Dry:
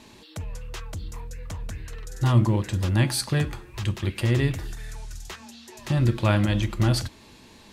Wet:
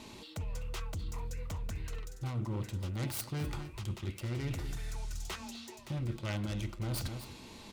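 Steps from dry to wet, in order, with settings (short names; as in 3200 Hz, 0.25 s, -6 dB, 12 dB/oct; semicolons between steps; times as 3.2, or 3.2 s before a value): self-modulated delay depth 0.39 ms; echo 0.253 s -20.5 dB; reverse; compressor 5:1, threshold -35 dBFS, peak gain reduction 19 dB; reverse; notch 1700 Hz, Q 7.2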